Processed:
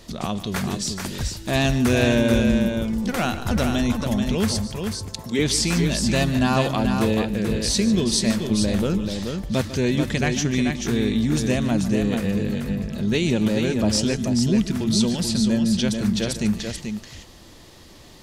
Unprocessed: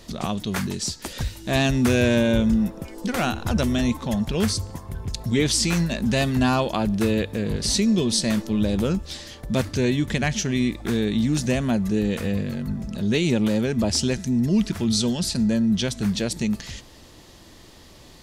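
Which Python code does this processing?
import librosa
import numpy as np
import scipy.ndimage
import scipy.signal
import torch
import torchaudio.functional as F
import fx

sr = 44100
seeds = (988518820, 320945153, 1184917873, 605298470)

y = fx.highpass(x, sr, hz=230.0, slope=12, at=(4.87, 5.39))
y = fx.echo_multitap(y, sr, ms=(147, 435), db=(-14.0, -5.5))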